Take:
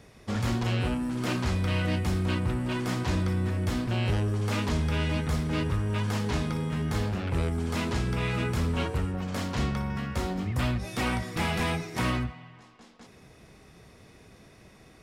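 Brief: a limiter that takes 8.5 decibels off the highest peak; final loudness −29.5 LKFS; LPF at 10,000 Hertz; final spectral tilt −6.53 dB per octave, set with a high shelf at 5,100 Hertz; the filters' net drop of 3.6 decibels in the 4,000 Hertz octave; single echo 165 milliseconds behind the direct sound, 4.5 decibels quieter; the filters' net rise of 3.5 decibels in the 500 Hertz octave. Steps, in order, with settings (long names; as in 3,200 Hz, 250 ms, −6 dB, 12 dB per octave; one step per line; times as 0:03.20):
low-pass filter 10,000 Hz
parametric band 500 Hz +4.5 dB
parametric band 4,000 Hz −3.5 dB
high-shelf EQ 5,100 Hz −3.5 dB
brickwall limiter −24.5 dBFS
single-tap delay 165 ms −4.5 dB
level +2 dB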